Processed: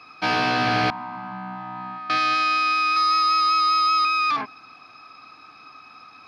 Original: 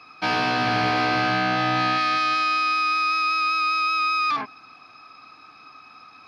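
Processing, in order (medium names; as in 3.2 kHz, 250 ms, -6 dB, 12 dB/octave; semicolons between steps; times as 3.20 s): 0.90–2.10 s: two resonant band-passes 440 Hz, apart 2.2 oct; 2.96–4.05 s: comb 2.2 ms, depth 93%; trim +1 dB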